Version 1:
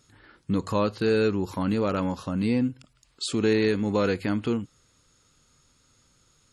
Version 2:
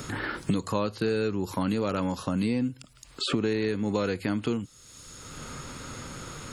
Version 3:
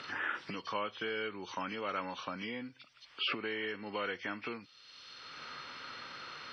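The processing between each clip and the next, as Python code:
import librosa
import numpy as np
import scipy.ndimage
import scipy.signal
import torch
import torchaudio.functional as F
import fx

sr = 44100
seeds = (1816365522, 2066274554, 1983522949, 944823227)

y1 = fx.high_shelf(x, sr, hz=7600.0, db=8.5)
y1 = fx.band_squash(y1, sr, depth_pct=100)
y1 = y1 * librosa.db_to_amplitude(-3.0)
y2 = fx.freq_compress(y1, sr, knee_hz=1700.0, ratio=1.5)
y2 = fx.bandpass_q(y2, sr, hz=2100.0, q=0.82)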